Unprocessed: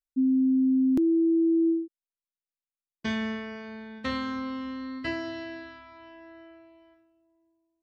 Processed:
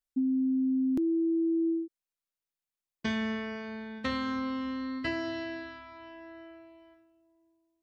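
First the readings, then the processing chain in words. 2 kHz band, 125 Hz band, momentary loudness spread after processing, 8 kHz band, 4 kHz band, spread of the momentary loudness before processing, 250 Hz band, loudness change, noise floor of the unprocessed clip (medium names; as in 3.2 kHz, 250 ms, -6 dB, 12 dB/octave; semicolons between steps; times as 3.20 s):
-0.5 dB, -1.0 dB, 20 LU, no reading, -1.0 dB, 17 LU, -4.5 dB, -4.5 dB, under -85 dBFS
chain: compression 3:1, threshold -29 dBFS, peak gain reduction 6 dB; trim +1 dB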